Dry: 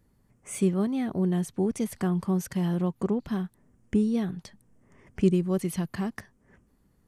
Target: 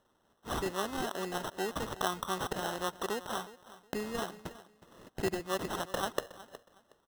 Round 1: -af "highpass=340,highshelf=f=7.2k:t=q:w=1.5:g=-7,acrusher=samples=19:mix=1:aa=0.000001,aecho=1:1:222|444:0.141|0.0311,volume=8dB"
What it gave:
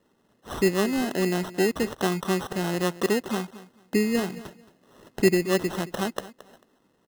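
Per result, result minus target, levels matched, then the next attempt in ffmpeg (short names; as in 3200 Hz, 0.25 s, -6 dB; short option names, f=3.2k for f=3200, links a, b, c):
echo 0.144 s early; 1000 Hz band -7.5 dB
-af "highpass=340,highshelf=f=7.2k:t=q:w=1.5:g=-7,acrusher=samples=19:mix=1:aa=0.000001,aecho=1:1:366|732:0.141|0.0311,volume=8dB"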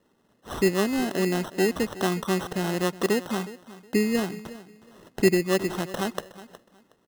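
1000 Hz band -7.5 dB
-af "highpass=930,highshelf=f=7.2k:t=q:w=1.5:g=-7,acrusher=samples=19:mix=1:aa=0.000001,aecho=1:1:366|732:0.141|0.0311,volume=8dB"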